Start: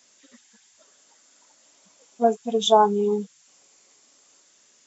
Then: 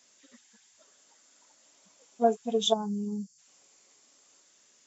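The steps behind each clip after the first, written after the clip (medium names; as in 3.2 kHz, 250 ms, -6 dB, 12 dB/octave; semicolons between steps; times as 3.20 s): time-frequency box 2.73–3.38 s, 260–4300 Hz -18 dB; trim -4 dB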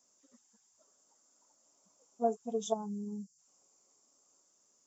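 high-order bell 2.6 kHz -12.5 dB; trim -7 dB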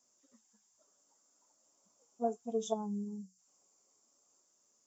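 flange 0.45 Hz, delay 8.1 ms, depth 2.6 ms, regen +70%; trim +2 dB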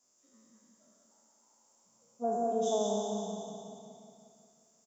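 spectral sustain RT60 2.16 s; on a send: feedback delay 179 ms, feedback 57%, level -4.5 dB; on the sum: trim -1.5 dB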